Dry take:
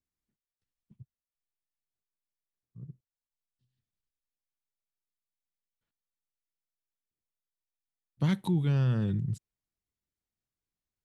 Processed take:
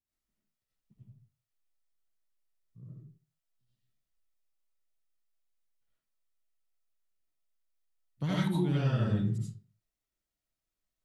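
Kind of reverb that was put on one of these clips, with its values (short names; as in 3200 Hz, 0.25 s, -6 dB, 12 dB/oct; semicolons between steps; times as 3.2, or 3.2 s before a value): digital reverb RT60 0.4 s, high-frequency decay 0.7×, pre-delay 45 ms, DRR -8 dB; gain -6 dB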